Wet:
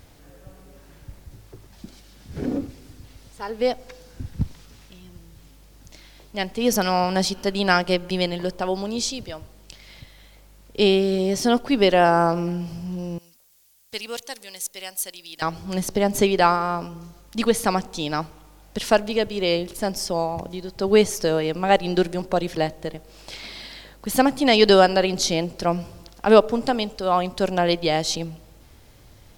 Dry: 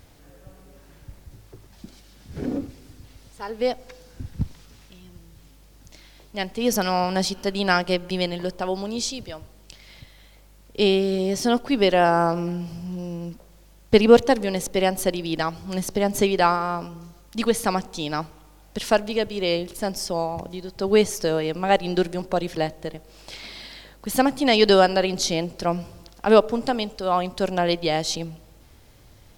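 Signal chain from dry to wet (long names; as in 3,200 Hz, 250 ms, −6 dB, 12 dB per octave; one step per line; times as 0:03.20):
0:13.18–0:15.42: first-order pre-emphasis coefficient 0.97
level +1.5 dB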